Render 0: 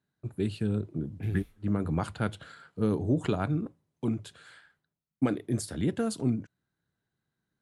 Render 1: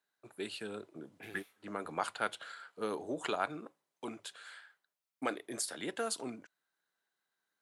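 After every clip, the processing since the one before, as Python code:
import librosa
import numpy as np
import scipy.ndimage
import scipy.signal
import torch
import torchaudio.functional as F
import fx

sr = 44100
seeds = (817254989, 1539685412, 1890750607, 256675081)

y = scipy.signal.sosfilt(scipy.signal.butter(2, 670.0, 'highpass', fs=sr, output='sos'), x)
y = y * librosa.db_to_amplitude(2.0)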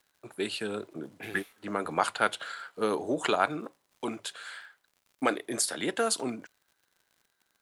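y = fx.dmg_crackle(x, sr, seeds[0], per_s=94.0, level_db=-59.0)
y = y * librosa.db_to_amplitude(8.5)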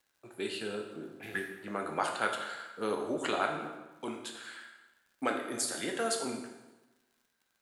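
y = fx.rev_plate(x, sr, seeds[1], rt60_s=1.1, hf_ratio=0.85, predelay_ms=0, drr_db=1.5)
y = y * librosa.db_to_amplitude(-6.0)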